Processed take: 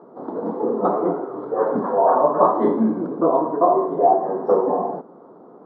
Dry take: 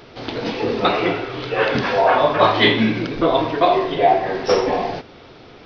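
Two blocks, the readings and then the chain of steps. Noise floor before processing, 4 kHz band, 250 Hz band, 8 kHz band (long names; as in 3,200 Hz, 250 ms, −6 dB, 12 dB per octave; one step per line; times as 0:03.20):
−43 dBFS, below −40 dB, −0.5 dB, can't be measured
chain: elliptic band-pass filter 180–1,100 Hz, stop band 40 dB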